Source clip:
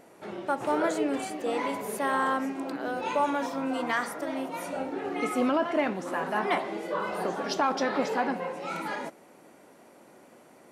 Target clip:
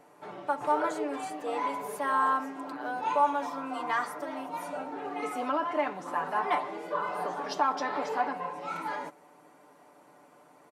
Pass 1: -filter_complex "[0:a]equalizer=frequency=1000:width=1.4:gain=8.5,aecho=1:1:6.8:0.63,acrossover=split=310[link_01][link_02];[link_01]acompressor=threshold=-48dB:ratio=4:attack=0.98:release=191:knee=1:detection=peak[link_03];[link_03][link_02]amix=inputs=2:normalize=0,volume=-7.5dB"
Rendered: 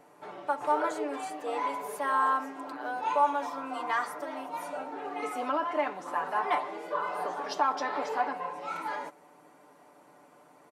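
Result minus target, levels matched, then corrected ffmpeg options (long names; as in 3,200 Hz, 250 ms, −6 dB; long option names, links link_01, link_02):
downward compressor: peak gain reduction +8 dB
-filter_complex "[0:a]equalizer=frequency=1000:width=1.4:gain=8.5,aecho=1:1:6.8:0.63,acrossover=split=310[link_01][link_02];[link_01]acompressor=threshold=-37.5dB:ratio=4:attack=0.98:release=191:knee=1:detection=peak[link_03];[link_03][link_02]amix=inputs=2:normalize=0,volume=-7.5dB"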